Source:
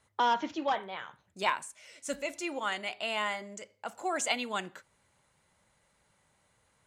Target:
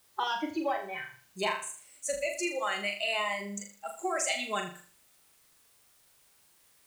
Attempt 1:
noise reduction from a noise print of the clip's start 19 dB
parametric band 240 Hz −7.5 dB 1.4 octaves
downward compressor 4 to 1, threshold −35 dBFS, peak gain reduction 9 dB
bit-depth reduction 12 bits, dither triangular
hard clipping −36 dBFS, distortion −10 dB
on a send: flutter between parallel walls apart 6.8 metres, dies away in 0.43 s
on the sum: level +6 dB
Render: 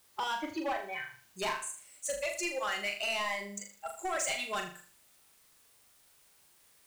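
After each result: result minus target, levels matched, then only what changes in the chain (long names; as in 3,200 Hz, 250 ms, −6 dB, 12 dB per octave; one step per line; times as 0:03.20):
hard clipping: distortion +26 dB; 250 Hz band −2.5 dB
change: hard clipping −25.5 dBFS, distortion −37 dB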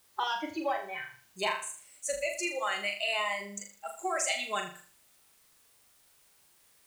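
250 Hz band −4.0 dB
remove: parametric band 240 Hz −7.5 dB 1.4 octaves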